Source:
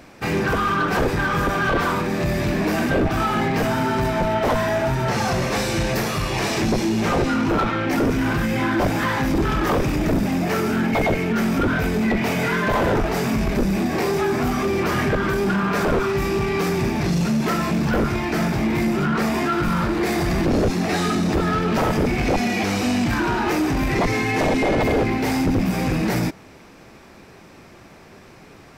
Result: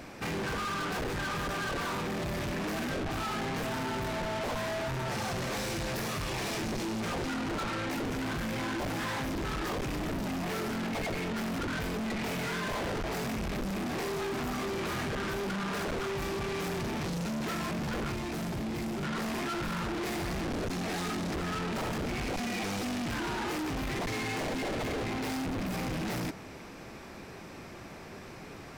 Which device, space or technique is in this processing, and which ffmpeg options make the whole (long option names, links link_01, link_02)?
saturation between pre-emphasis and de-emphasis: -filter_complex "[0:a]highshelf=frequency=11000:gain=6,asoftclip=type=tanh:threshold=-32.5dB,highshelf=frequency=11000:gain=-6,asettb=1/sr,asplit=3[link_01][link_02][link_03];[link_01]atrim=end=18.144[link_04];[link_02]atrim=start=18.14:end=19.03,asetpts=PTS-STARTPTS,afade=type=in:duration=0.004:curve=qsin,afade=type=out:start_time=0.886:duration=0.004:curve=qsin,equalizer=frequency=1700:width_type=o:width=2.7:gain=-5[link_05];[link_03]atrim=start=19.026[link_06];[link_04][link_05]acrossfade=duration=0.004:curve1=hsin:curve2=qsin[link_07];[link_07][link_06]acrossfade=duration=0.004:curve1=qsin:curve2=hsin"